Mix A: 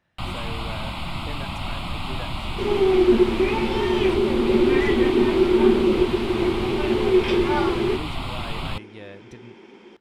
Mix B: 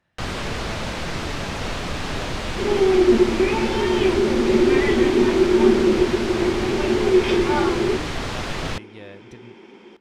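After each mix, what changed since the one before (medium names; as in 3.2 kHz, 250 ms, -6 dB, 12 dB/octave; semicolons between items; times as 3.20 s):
first sound: remove static phaser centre 1.7 kHz, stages 6; second sound: send +9.0 dB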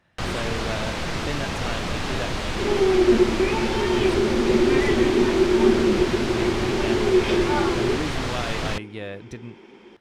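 speech +7.5 dB; reverb: off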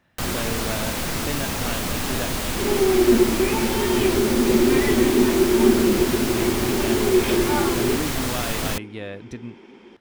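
first sound: remove low-pass 4.6 kHz 12 dB/octave; master: add peaking EQ 250 Hz +6.5 dB 0.25 oct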